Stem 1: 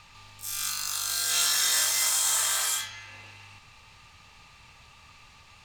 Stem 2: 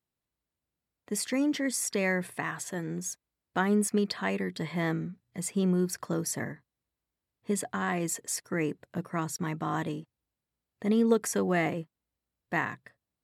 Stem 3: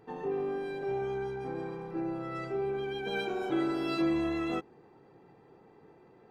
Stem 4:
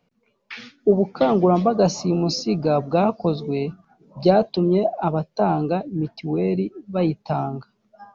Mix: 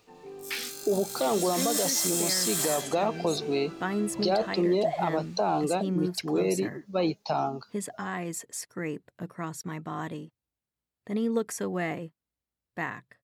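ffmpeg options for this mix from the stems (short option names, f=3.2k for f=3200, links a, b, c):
-filter_complex "[0:a]highshelf=f=4.9k:g=11,volume=-7.5dB,afade=t=in:st=1.47:d=0.34:silence=0.334965[a];[1:a]adelay=250,volume=-3.5dB[b];[2:a]volume=-11dB[c];[3:a]bass=f=250:g=-12,treble=f=4k:g=13,alimiter=limit=-14.5dB:level=0:latency=1,volume=-0.5dB[d];[a][b][c][d]amix=inputs=4:normalize=0,alimiter=limit=-16.5dB:level=0:latency=1:release=89"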